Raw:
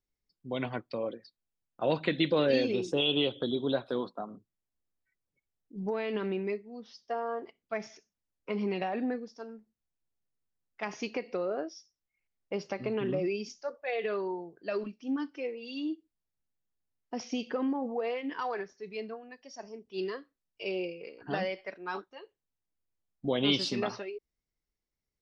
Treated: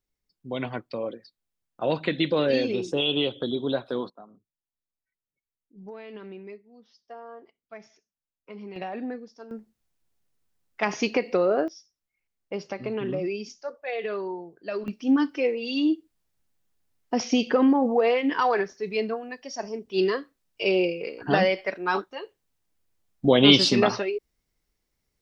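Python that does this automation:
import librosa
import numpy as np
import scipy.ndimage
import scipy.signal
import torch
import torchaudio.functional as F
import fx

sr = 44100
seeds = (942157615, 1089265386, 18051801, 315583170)

y = fx.gain(x, sr, db=fx.steps((0.0, 3.0), (4.1, -8.5), (8.76, -1.0), (9.51, 10.5), (11.68, 2.0), (14.88, 11.5)))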